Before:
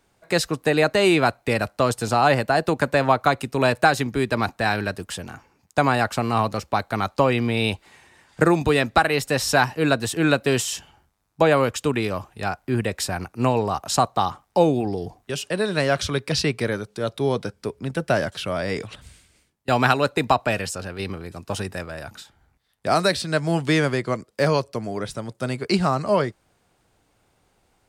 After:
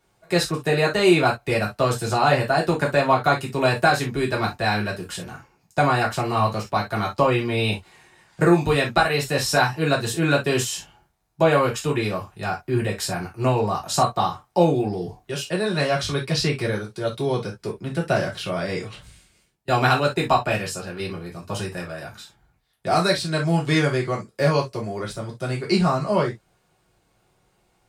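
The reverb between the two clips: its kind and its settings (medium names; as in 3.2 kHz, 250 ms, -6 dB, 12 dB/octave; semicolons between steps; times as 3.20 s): gated-style reverb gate 90 ms falling, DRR -3 dB; trim -5 dB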